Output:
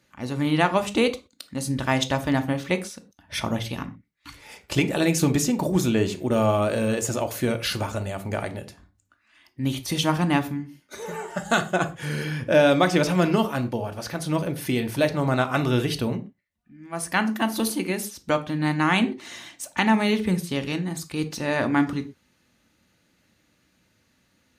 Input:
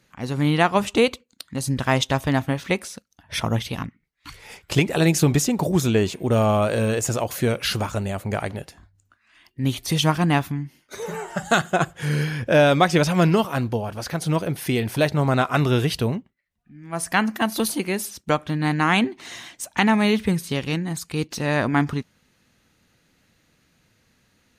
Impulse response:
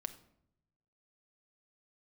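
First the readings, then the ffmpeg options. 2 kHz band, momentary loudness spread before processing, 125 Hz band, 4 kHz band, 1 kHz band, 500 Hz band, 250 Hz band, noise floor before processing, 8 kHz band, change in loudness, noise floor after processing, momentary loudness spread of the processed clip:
-2.0 dB, 12 LU, -4.5 dB, -2.5 dB, -2.5 dB, -2.0 dB, -1.0 dB, -66 dBFS, -2.5 dB, -2.0 dB, -67 dBFS, 12 LU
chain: -filter_complex "[0:a]highpass=50[a];[1:a]atrim=start_sample=2205,afade=t=out:st=0.26:d=0.01,atrim=end_sample=11907,asetrate=70560,aresample=44100[b];[a][b]afir=irnorm=-1:irlink=0,volume=4dB"

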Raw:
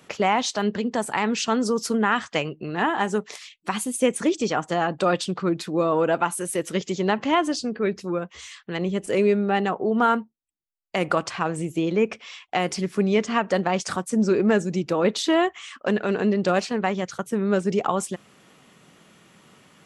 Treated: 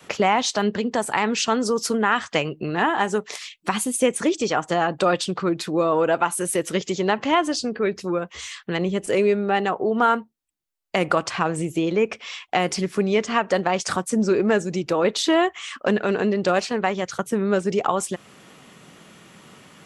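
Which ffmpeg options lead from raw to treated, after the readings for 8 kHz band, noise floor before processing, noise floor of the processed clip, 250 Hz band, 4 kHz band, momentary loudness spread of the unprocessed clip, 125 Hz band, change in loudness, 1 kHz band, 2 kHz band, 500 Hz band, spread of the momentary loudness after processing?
+3.5 dB, -60 dBFS, -58 dBFS, 0.0 dB, +3.0 dB, 8 LU, 0.0 dB, +1.5 dB, +2.0 dB, +2.5 dB, +1.5 dB, 6 LU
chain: -filter_complex "[0:a]asplit=2[a][b];[b]acompressor=threshold=-29dB:ratio=6,volume=0dB[c];[a][c]amix=inputs=2:normalize=0,adynamicequalizer=threshold=0.0224:dfrequency=200:dqfactor=1.2:tfrequency=200:tqfactor=1.2:attack=5:release=100:ratio=0.375:range=3:mode=cutabove:tftype=bell"

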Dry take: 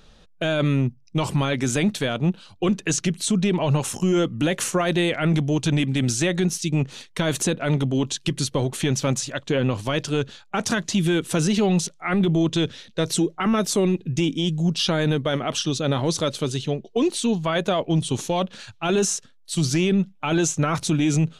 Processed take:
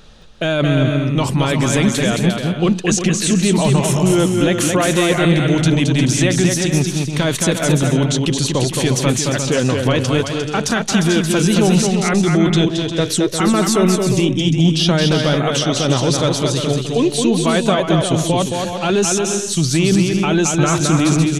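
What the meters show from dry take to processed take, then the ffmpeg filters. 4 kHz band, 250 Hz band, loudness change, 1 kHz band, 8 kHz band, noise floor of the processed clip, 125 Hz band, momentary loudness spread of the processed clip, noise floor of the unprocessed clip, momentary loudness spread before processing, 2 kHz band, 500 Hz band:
+7.5 dB, +7.0 dB, +7.0 dB, +7.0 dB, +8.0 dB, -24 dBFS, +7.0 dB, 4 LU, -53 dBFS, 5 LU, +7.0 dB, +7.0 dB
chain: -filter_complex "[0:a]asplit=2[a][b];[b]alimiter=limit=-21dB:level=0:latency=1,volume=-1dB[c];[a][c]amix=inputs=2:normalize=0,aecho=1:1:220|352|431.2|478.7|507.2:0.631|0.398|0.251|0.158|0.1,volume=2dB"

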